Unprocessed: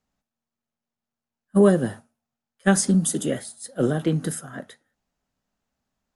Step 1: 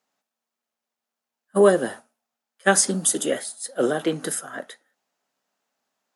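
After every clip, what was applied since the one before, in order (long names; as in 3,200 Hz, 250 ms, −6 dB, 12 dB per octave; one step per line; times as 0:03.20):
high-pass filter 410 Hz 12 dB per octave
level +5 dB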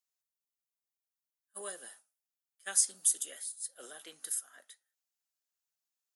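first difference
level −8 dB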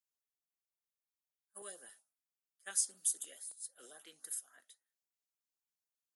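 auto-filter notch saw up 3.7 Hz 530–6,300 Hz
level −6 dB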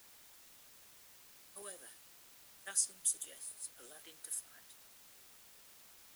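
bit-depth reduction 10 bits, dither triangular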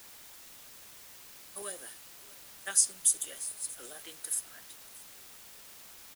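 single-tap delay 633 ms −20.5 dB
level +8.5 dB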